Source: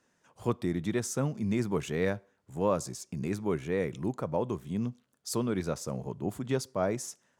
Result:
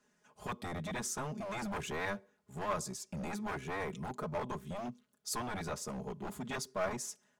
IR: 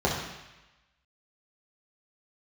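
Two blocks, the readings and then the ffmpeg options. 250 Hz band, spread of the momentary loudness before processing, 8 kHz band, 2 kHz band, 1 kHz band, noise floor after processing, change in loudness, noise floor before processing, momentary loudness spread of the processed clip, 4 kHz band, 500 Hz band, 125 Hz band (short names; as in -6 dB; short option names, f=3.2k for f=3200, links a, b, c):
-10.0 dB, 7 LU, -2.0 dB, 0.0 dB, -1.0 dB, -75 dBFS, -7.0 dB, -73 dBFS, 6 LU, -1.5 dB, -9.0 dB, -10.0 dB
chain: -filter_complex "[0:a]aecho=1:1:4.8:0.89,acrossover=split=640|6100[a][b][c];[a]aeval=exprs='0.0299*(abs(mod(val(0)/0.0299+3,4)-2)-1)':c=same[d];[d][b][c]amix=inputs=3:normalize=0,volume=-4.5dB"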